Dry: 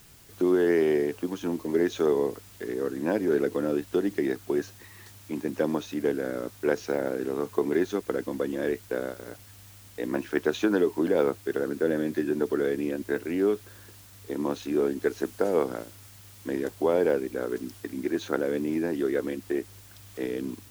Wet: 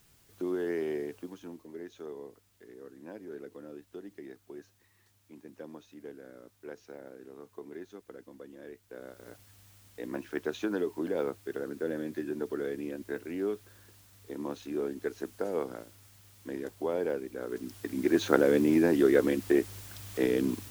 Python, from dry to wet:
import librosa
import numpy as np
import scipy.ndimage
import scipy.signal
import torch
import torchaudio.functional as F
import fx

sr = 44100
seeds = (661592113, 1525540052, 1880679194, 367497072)

y = fx.gain(x, sr, db=fx.line((1.15, -10.0), (1.74, -19.0), (8.83, -19.0), (9.28, -8.0), (17.37, -8.0), (18.21, 4.0)))